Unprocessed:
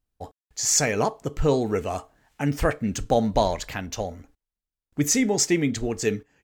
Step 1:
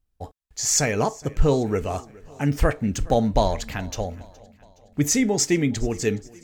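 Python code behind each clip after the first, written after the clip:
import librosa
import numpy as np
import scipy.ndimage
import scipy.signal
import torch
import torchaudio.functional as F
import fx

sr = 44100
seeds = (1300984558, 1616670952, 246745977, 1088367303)

y = fx.low_shelf(x, sr, hz=110.0, db=8.5)
y = fx.echo_feedback(y, sr, ms=418, feedback_pct=54, wet_db=-23.0)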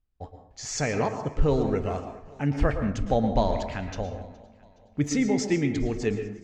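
y = fx.air_absorb(x, sr, metres=130.0)
y = fx.rev_plate(y, sr, seeds[0], rt60_s=0.7, hf_ratio=0.5, predelay_ms=100, drr_db=7.0)
y = y * librosa.db_to_amplitude(-3.5)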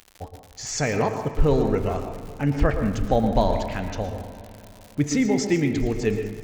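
y = fx.rev_spring(x, sr, rt60_s=3.7, pass_ms=(38, 51, 56), chirp_ms=25, drr_db=13.0)
y = fx.dmg_crackle(y, sr, seeds[1], per_s=130.0, level_db=-36.0)
y = y * librosa.db_to_amplitude(3.0)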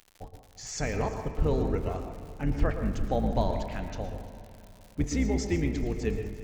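y = fx.octave_divider(x, sr, octaves=2, level_db=1.0)
y = y + 10.0 ** (-19.0 / 20.0) * np.pad(y, (int(348 * sr / 1000.0), 0))[:len(y)]
y = y * librosa.db_to_amplitude(-8.0)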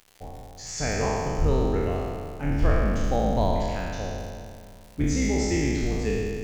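y = fx.spec_trails(x, sr, decay_s=2.14)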